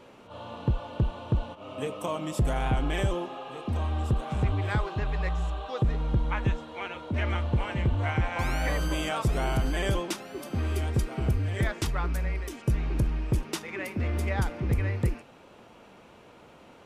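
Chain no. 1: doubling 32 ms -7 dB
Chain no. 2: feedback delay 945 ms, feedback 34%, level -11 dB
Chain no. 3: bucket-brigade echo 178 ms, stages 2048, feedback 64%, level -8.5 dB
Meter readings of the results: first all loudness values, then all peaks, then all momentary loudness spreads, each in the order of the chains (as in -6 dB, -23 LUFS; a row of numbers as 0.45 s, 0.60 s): -29.0 LUFS, -29.5 LUFS, -29.0 LUFS; -15.0 dBFS, -16.0 dBFS, -14.5 dBFS; 7 LU, 11 LU, 7 LU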